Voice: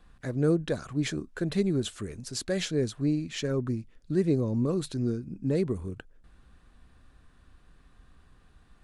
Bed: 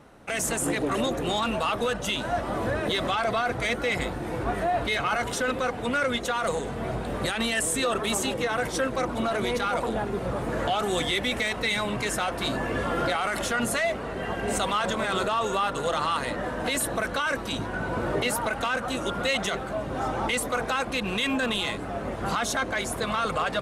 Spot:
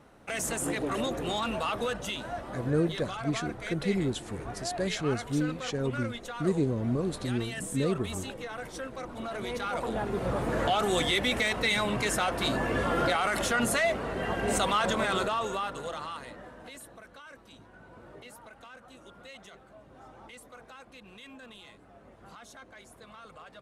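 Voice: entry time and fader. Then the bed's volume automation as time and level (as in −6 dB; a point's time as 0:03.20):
2.30 s, −2.0 dB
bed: 0:01.89 −4.5 dB
0:02.63 −12 dB
0:09.05 −12 dB
0:10.29 −0.5 dB
0:15.03 −0.5 dB
0:17.01 −22.5 dB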